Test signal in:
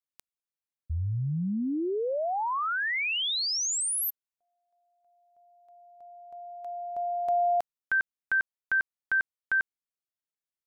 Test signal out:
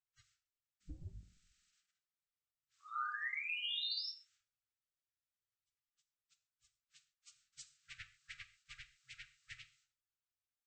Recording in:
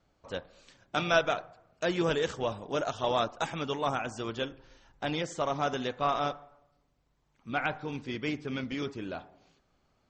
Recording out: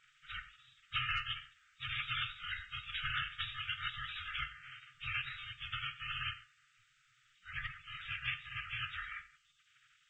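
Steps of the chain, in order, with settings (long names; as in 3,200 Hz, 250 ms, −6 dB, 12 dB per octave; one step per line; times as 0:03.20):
partials spread apart or drawn together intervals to 78%
hum removal 406.5 Hz, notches 10
brick-wall band-stop 130–1,200 Hz
dynamic equaliser 2,500 Hz, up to +4 dB, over −48 dBFS, Q 1.8
downward compressor 2 to 1, threshold −39 dBFS
gate on every frequency bin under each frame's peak −15 dB weak
reverb whose tail is shaped and stops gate 170 ms falling, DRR 9.5 dB
level +16.5 dB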